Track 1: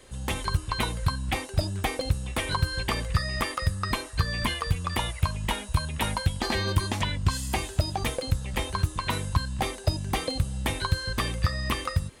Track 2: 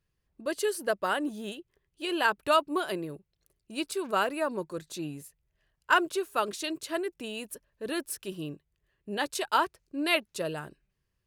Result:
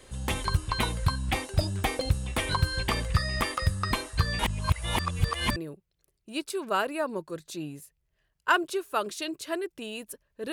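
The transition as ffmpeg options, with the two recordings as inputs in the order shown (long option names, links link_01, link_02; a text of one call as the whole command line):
ffmpeg -i cue0.wav -i cue1.wav -filter_complex "[0:a]apad=whole_dur=10.52,atrim=end=10.52,asplit=2[link_01][link_02];[link_01]atrim=end=4.392[link_03];[link_02]atrim=start=4.388:end=5.562,asetpts=PTS-STARTPTS,areverse[link_04];[1:a]atrim=start=2.978:end=7.94[link_05];[link_03][link_04]acrossfade=duration=0.004:curve1=hsin:curve2=hsin[link_06];[link_06][link_05]acrossfade=duration=0.004:curve1=hsin:curve2=hsin" out.wav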